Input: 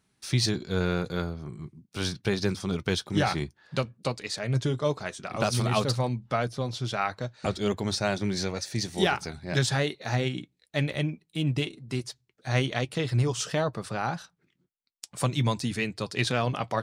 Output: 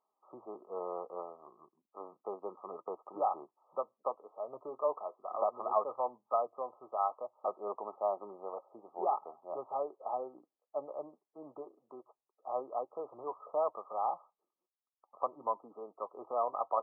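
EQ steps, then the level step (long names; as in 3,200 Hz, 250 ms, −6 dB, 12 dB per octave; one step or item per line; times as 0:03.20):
four-pole ladder high-pass 510 Hz, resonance 25%
linear-phase brick-wall low-pass 1,300 Hz
+3.0 dB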